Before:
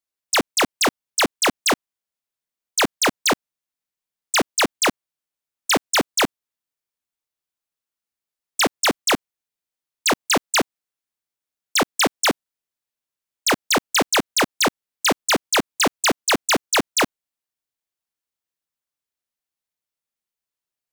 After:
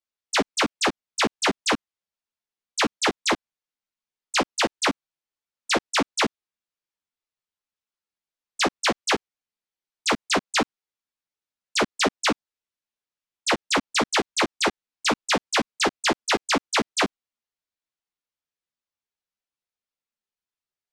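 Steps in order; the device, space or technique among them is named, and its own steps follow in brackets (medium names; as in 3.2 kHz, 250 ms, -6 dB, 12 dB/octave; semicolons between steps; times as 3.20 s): string-machine ensemble chorus (three-phase chorus; low-pass 6.2 kHz 12 dB/octave)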